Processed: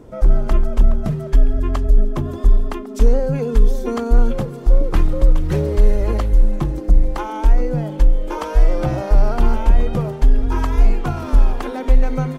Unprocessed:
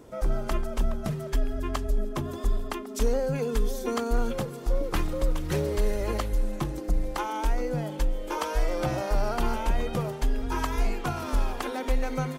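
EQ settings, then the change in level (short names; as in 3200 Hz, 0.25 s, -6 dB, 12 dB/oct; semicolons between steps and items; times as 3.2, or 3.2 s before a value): tilt -2 dB/oct; +4.0 dB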